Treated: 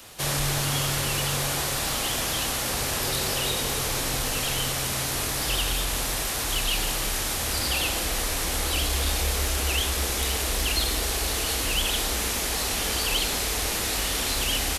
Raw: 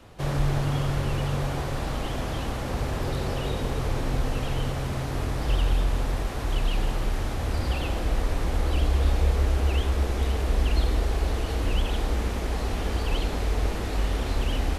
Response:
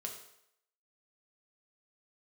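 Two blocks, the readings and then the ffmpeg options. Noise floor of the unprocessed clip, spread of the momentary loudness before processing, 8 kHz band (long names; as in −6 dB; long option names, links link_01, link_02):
−30 dBFS, 5 LU, +18.0 dB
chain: -filter_complex "[0:a]crystalizer=i=9.5:c=0,acontrast=76,lowshelf=frequency=120:gain=-6.5,asplit=2[link_01][link_02];[link_02]adelay=29,volume=-13dB[link_03];[link_01][link_03]amix=inputs=2:normalize=0,volume=-9dB"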